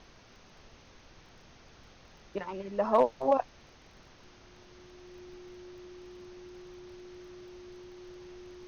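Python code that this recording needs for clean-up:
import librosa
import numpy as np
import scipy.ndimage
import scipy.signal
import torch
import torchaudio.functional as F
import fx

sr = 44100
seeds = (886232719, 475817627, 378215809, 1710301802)

y = fx.fix_declip(x, sr, threshold_db=-14.0)
y = fx.fix_declick_ar(y, sr, threshold=6.5)
y = fx.notch(y, sr, hz=360.0, q=30.0)
y = fx.noise_reduce(y, sr, print_start_s=0.04, print_end_s=0.54, reduce_db=26.0)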